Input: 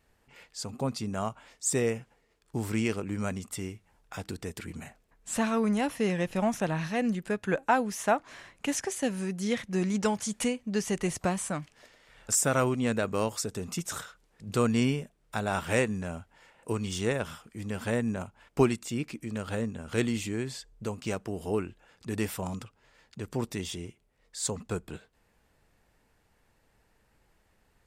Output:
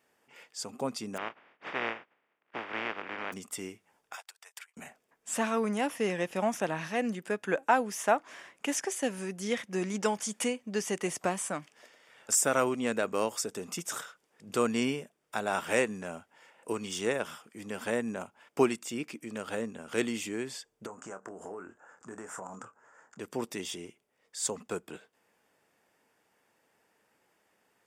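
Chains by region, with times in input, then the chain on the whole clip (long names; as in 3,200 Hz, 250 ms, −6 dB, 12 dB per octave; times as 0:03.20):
0:01.16–0:03.32: compressing power law on the bin magnitudes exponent 0.17 + low-pass filter 2,400 Hz 24 dB per octave
0:04.15–0:04.77: inverse Chebyshev high-pass filter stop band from 300 Hz, stop band 50 dB + expander for the loud parts 2.5 to 1, over −58 dBFS
0:20.86–0:23.19: drawn EQ curve 340 Hz 0 dB, 1,500 Hz +9 dB, 2,300 Hz −10 dB, 4,200 Hz −19 dB, 7,200 Hz +6 dB, 14,000 Hz −26 dB + downward compressor, threshold −37 dBFS + double-tracking delay 26 ms −10 dB
whole clip: high-pass filter 270 Hz 12 dB per octave; notch filter 4,100 Hz, Q 8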